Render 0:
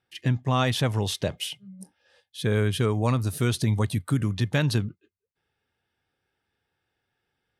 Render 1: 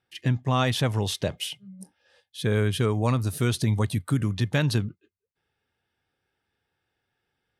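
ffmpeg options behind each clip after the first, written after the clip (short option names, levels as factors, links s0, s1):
-af anull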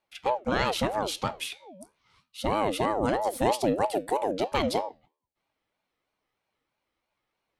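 -af "flanger=delay=8.1:depth=5.4:regen=82:speed=0.28:shape=triangular,aeval=exprs='val(0)*sin(2*PI*560*n/s+560*0.35/3.1*sin(2*PI*3.1*n/s))':c=same,volume=1.68"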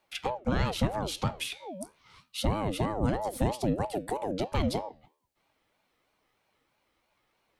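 -filter_complex "[0:a]acrossover=split=190[s0][s1];[s1]acompressor=threshold=0.0112:ratio=5[s2];[s0][s2]amix=inputs=2:normalize=0,volume=2.37"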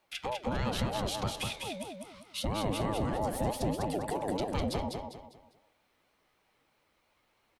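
-af "alimiter=level_in=1.06:limit=0.0631:level=0:latency=1:release=91,volume=0.944,aecho=1:1:200|400|600|800:0.631|0.215|0.0729|0.0248"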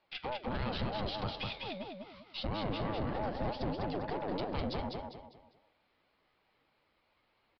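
-af "aeval=exprs='(tanh(31.6*val(0)+0.45)-tanh(0.45))/31.6':c=same,aresample=11025,aresample=44100"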